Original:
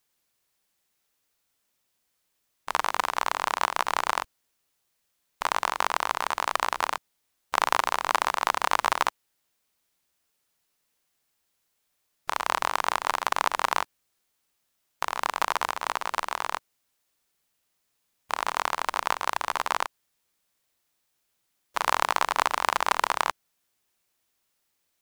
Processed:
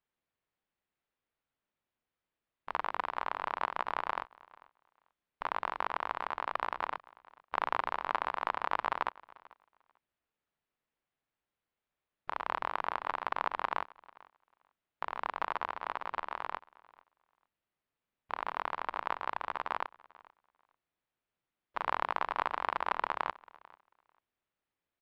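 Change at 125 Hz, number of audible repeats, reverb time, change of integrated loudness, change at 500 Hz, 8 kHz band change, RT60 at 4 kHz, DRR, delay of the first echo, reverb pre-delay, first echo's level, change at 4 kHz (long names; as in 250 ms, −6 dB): can't be measured, 1, no reverb audible, −9.0 dB, −7.0 dB, below −30 dB, no reverb audible, no reverb audible, 443 ms, no reverb audible, −23.0 dB, −15.5 dB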